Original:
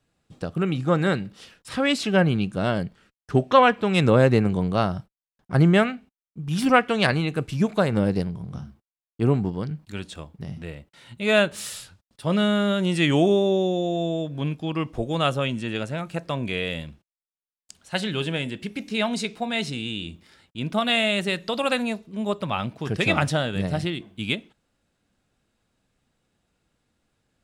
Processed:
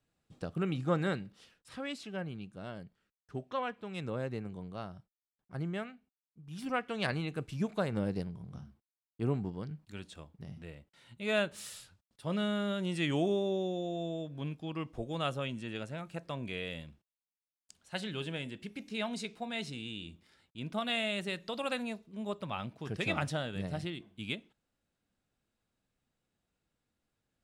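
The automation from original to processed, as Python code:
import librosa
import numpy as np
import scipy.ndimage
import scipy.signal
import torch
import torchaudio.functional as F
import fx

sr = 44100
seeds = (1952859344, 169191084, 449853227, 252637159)

y = fx.gain(x, sr, db=fx.line((0.92, -9.0), (2.15, -20.0), (6.45, -20.0), (7.14, -11.5)))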